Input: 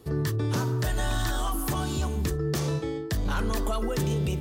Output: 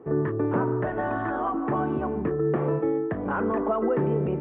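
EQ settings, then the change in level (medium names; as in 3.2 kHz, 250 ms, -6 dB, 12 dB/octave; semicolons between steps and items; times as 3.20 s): Gaussian low-pass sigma 5.8 samples; high-pass 250 Hz 12 dB/octave; +8.5 dB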